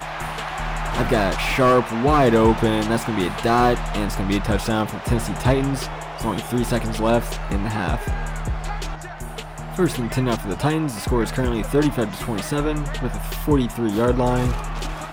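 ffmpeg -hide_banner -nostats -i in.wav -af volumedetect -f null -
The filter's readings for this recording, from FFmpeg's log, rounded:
mean_volume: -21.2 dB
max_volume: -4.1 dB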